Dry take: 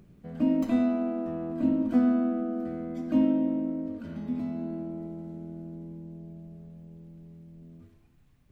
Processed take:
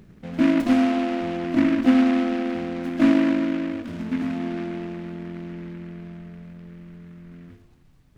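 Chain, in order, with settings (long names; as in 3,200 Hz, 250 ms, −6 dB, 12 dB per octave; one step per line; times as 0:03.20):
wrong playback speed 24 fps film run at 25 fps
short delay modulated by noise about 1,600 Hz, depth 0.081 ms
level +6 dB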